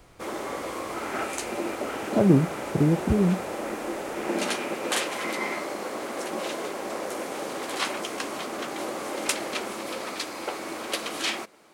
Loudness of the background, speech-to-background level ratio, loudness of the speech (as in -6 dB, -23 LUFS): -31.0 LUFS, 7.5 dB, -23.5 LUFS